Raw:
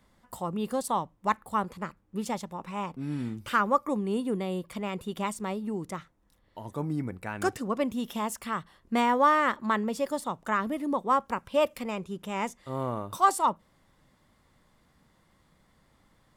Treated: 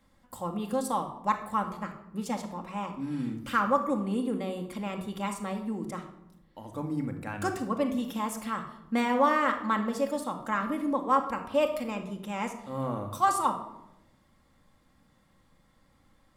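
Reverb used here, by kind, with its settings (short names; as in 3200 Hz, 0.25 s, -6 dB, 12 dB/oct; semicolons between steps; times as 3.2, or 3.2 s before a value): shoebox room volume 2700 m³, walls furnished, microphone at 2.2 m; gain -3 dB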